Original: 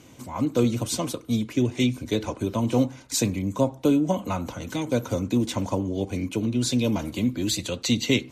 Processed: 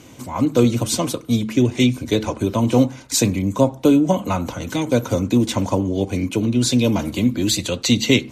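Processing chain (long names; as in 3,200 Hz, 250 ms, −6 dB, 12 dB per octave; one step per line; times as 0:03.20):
hum removal 73.34 Hz, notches 3
level +6.5 dB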